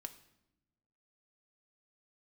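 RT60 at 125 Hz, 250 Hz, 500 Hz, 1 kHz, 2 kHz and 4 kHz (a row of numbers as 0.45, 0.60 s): 1.5, 1.4, 0.95, 0.80, 0.75, 0.70 s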